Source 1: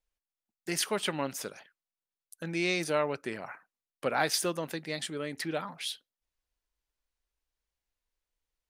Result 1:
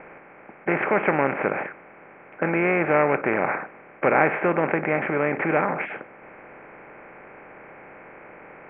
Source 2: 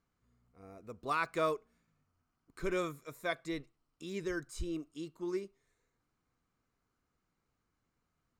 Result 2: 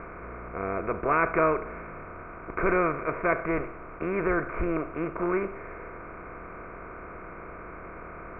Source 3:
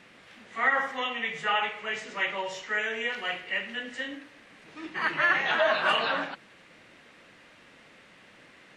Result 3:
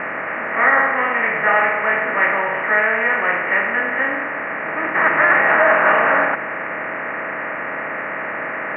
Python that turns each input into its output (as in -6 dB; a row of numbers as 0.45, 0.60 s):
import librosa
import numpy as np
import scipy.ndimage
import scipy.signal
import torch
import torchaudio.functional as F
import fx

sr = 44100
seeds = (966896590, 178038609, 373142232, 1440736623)

y = fx.bin_compress(x, sr, power=0.4)
y = scipy.signal.sosfilt(scipy.signal.butter(12, 2400.0, 'lowpass', fs=sr, output='sos'), y)
y = F.gain(torch.from_numpy(y), 6.0).numpy()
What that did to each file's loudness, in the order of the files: +9.5, +10.0, +10.5 LU